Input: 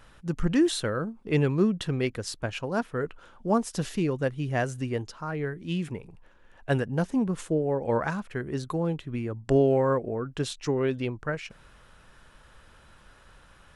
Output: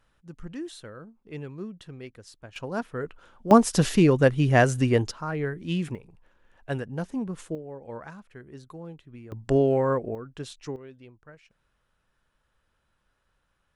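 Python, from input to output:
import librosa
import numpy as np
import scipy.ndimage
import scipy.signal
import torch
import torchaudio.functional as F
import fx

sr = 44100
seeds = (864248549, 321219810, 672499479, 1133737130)

y = fx.gain(x, sr, db=fx.steps((0.0, -14.0), (2.56, -2.5), (3.51, 8.5), (5.11, 2.0), (5.95, -5.0), (7.55, -13.0), (9.32, 0.0), (10.15, -7.5), (10.76, -19.0)))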